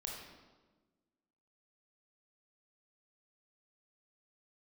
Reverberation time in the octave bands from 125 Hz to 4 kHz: 1.6, 1.8, 1.4, 1.2, 1.0, 0.95 seconds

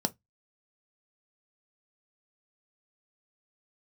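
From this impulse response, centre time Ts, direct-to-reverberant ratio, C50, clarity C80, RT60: 3 ms, 7.5 dB, 26.5 dB, 41.5 dB, non-exponential decay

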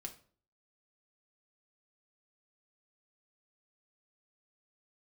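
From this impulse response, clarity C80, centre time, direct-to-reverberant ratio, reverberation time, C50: 18.0 dB, 9 ms, 2.5 dB, 0.45 s, 13.0 dB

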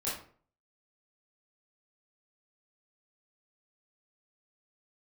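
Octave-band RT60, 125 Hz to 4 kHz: 0.55, 0.50, 0.50, 0.45, 0.40, 0.30 seconds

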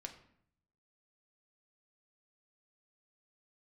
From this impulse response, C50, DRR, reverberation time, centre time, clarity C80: 11.0 dB, 4.0 dB, 0.65 s, 12 ms, 13.5 dB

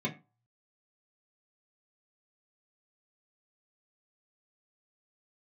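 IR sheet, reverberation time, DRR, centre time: 0.30 s, −5.0 dB, 14 ms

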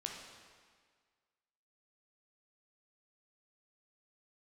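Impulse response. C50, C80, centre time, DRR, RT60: 2.5 dB, 4.5 dB, 64 ms, 0.0 dB, 1.7 s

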